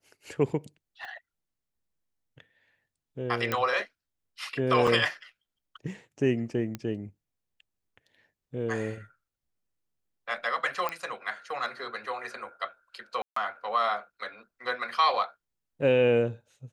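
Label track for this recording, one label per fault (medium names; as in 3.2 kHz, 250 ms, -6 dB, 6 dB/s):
1.050000	1.050000	pop -30 dBFS
3.520000	3.520000	pop -13 dBFS
4.870000	4.870000	dropout 4.9 ms
6.750000	6.750000	pop -20 dBFS
10.890000	10.890000	pop -16 dBFS
13.220000	13.360000	dropout 144 ms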